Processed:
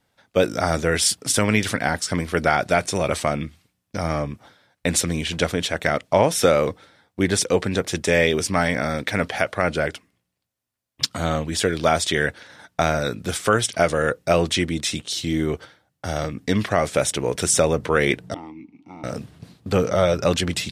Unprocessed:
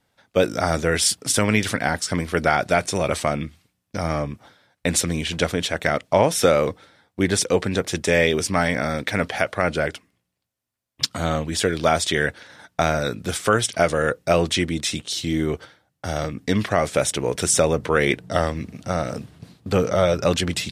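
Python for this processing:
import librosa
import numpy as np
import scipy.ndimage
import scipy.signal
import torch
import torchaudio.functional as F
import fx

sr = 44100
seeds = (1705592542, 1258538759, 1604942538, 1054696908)

y = fx.vowel_filter(x, sr, vowel='u', at=(18.34, 19.04))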